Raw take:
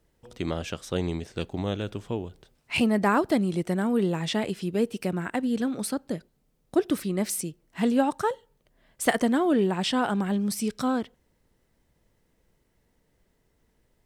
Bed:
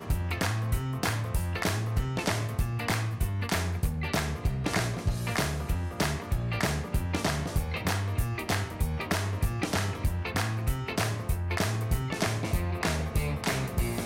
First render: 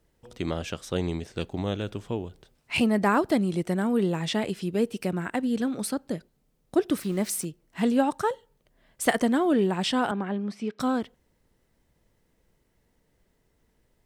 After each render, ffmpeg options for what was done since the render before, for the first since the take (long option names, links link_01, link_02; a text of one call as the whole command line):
ffmpeg -i in.wav -filter_complex "[0:a]asettb=1/sr,asplit=3[link_01][link_02][link_03];[link_01]atrim=end=7.014[link_04];[link_02]atrim=start=7.01:end=7.45,asetpts=PTS-STARTPTS,afade=type=in:duration=0.004:curve=qsin,afade=type=out:start_time=0.436:duration=0.004:curve=qsin,aeval=exprs='val(0)*gte(abs(val(0)),0.00794)':channel_layout=same[link_05];[link_03]atrim=start=7.446[link_06];[link_04][link_05]acrossfade=duration=0.004:curve1=hsin:curve2=qsin[link_07];[link_07][link_06]acrossfade=duration=0.004:curve1=qsin:curve2=hsin,asettb=1/sr,asplit=3[link_08][link_09][link_10];[link_08]atrim=end=10.114[link_11];[link_09]atrim=start=10.11:end=10.8,asetpts=PTS-STARTPTS,afade=type=in:duration=0.004:curve=qsin,afade=type=out:start_time=0.686:duration=0.004:curve=qsin,highpass=230,lowpass=2400[link_12];[link_10]atrim=start=10.796[link_13];[link_11][link_12]acrossfade=duration=0.004:curve1=hsin:curve2=qsin[link_14];[link_14][link_13]acrossfade=duration=0.004:curve1=qsin:curve2=hsin" out.wav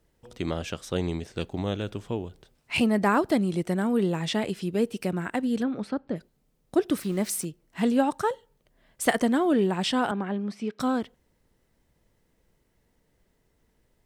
ffmpeg -i in.wav -filter_complex "[0:a]asplit=3[link_01][link_02][link_03];[link_01]afade=type=out:start_time=5.62:duration=0.02[link_04];[link_02]lowpass=2600,afade=type=in:start_time=5.62:duration=0.02,afade=type=out:start_time=6.15:duration=0.02[link_05];[link_03]afade=type=in:start_time=6.15:duration=0.02[link_06];[link_04][link_05][link_06]amix=inputs=3:normalize=0" out.wav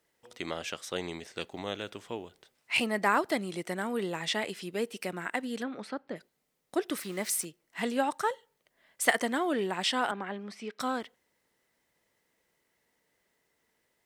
ffmpeg -i in.wav -af "highpass=frequency=770:poles=1,equalizer=frequency=2000:width_type=o:width=0.26:gain=4.5" out.wav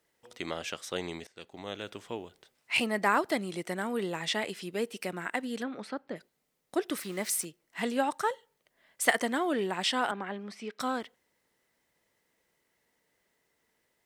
ffmpeg -i in.wav -filter_complex "[0:a]asplit=2[link_01][link_02];[link_01]atrim=end=1.27,asetpts=PTS-STARTPTS,afade=type=out:start_time=1.266:duration=0.004:curve=hsin:silence=0.141254[link_03];[link_02]atrim=start=1.27,asetpts=PTS-STARTPTS,afade=type=in:duration=0.68:silence=0.141254[link_04];[link_03][link_04]concat=n=2:v=0:a=1" out.wav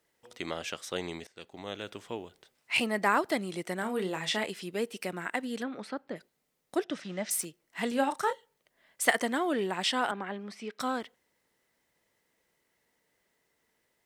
ffmpeg -i in.wav -filter_complex "[0:a]asettb=1/sr,asplit=3[link_01][link_02][link_03];[link_01]atrim=end=3.794[link_04];[link_02]atrim=start=3.79:end=4.46,asetpts=PTS-STARTPTS,afade=type=in:duration=0.004:curve=qsin,afade=type=out:start_time=0.666:duration=0.004:curve=qsin,asplit=2[link_05][link_06];[link_06]adelay=32,volume=-9dB[link_07];[link_05][link_07]amix=inputs=2:normalize=0,atrim=end_sample=29547[link_08];[link_03]atrim=start=4.456[link_09];[link_04][link_08]acrossfade=duration=0.004:curve1=hsin:curve2=qsin[link_10];[link_10][link_09]acrossfade=duration=0.004:curve1=qsin:curve2=hsin,asettb=1/sr,asplit=3[link_11][link_12][link_13];[link_11]atrim=end=6.844[link_14];[link_12]atrim=start=6.84:end=7.31,asetpts=PTS-STARTPTS,afade=type=in:duration=0.004:curve=qsin,afade=type=out:start_time=0.466:duration=0.004:curve=qsin,highpass=130,equalizer=frequency=160:width_type=q:width=4:gain=6,equalizer=frequency=400:width_type=q:width=4:gain=-9,equalizer=frequency=610:width_type=q:width=4:gain=4,equalizer=frequency=1100:width_type=q:width=4:gain=-7,equalizer=frequency=2200:width_type=q:width=4:gain=-5,equalizer=frequency=4400:width_type=q:width=4:gain=-7,lowpass=frequency=5700:width=0.5412,lowpass=frequency=5700:width=1.3066[link_15];[link_13]atrim=start=7.306[link_16];[link_14][link_15]acrossfade=duration=0.004:curve1=hsin:curve2=qsin[link_17];[link_17][link_16]acrossfade=duration=0.004:curve1=qsin:curve2=hsin,asettb=1/sr,asplit=3[link_18][link_19][link_20];[link_18]atrim=end=7.884[link_21];[link_19]atrim=start=7.88:end=8.33,asetpts=PTS-STARTPTS,afade=type=in:duration=0.004:curve=qsin,afade=type=out:start_time=0.446:duration=0.004:curve=qsin,asplit=2[link_22][link_23];[link_23]adelay=33,volume=-8.5dB[link_24];[link_22][link_24]amix=inputs=2:normalize=0,atrim=end_sample=19845[link_25];[link_20]atrim=start=8.326[link_26];[link_21][link_25]acrossfade=duration=0.004:curve1=hsin:curve2=qsin[link_27];[link_27][link_26]acrossfade=duration=0.004:curve1=qsin:curve2=hsin" out.wav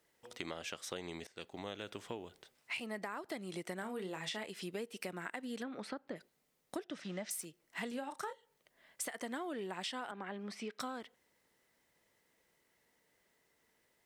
ffmpeg -i in.wav -af "alimiter=limit=-18.5dB:level=0:latency=1:release=221,acompressor=threshold=-39dB:ratio=6" out.wav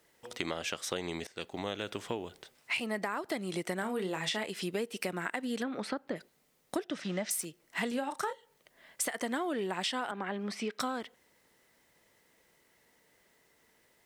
ffmpeg -i in.wav -af "volume=7.5dB" out.wav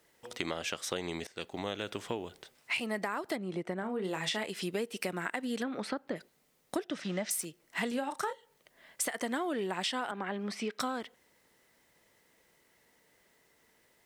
ffmpeg -i in.wav -filter_complex "[0:a]asplit=3[link_01][link_02][link_03];[link_01]afade=type=out:start_time=3.35:duration=0.02[link_04];[link_02]lowpass=frequency=1100:poles=1,afade=type=in:start_time=3.35:duration=0.02,afade=type=out:start_time=4.03:duration=0.02[link_05];[link_03]afade=type=in:start_time=4.03:duration=0.02[link_06];[link_04][link_05][link_06]amix=inputs=3:normalize=0" out.wav